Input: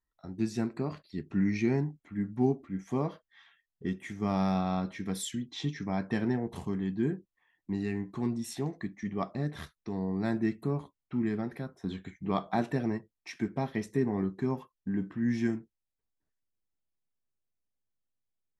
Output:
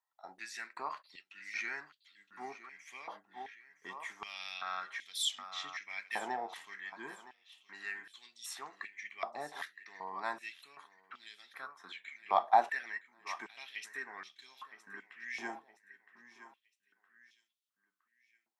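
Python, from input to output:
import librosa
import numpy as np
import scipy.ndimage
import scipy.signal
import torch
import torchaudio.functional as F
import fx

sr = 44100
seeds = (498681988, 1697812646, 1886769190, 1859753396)

y = fx.echo_feedback(x, sr, ms=965, feedback_pct=36, wet_db=-14.5)
y = fx.filter_held_highpass(y, sr, hz=2.6, low_hz=810.0, high_hz=3400.0)
y = y * 10.0 ** (-2.0 / 20.0)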